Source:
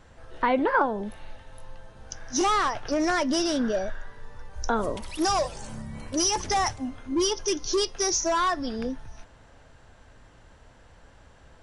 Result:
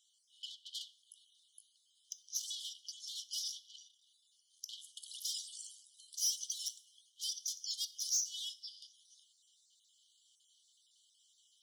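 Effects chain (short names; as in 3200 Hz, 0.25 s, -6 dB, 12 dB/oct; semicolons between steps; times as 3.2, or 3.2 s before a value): random spectral dropouts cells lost 22%; bell 4300 Hz -6.5 dB 2.1 oct; in parallel at +3 dB: vocal rider within 3 dB 0.5 s; on the sum: soft clip -22 dBFS, distortion -9 dB; brick-wall FIR high-pass 2900 Hz; two-slope reverb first 0.49 s, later 2.2 s, from -25 dB, DRR 14.5 dB; gain -5 dB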